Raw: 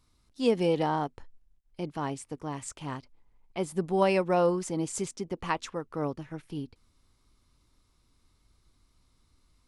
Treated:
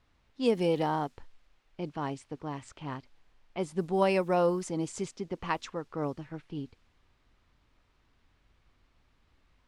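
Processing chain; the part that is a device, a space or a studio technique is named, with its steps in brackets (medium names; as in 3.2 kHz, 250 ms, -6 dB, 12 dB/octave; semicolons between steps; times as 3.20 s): cassette deck with a dynamic noise filter (white noise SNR 33 dB; level-controlled noise filter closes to 2.6 kHz, open at -22.5 dBFS); trim -1.5 dB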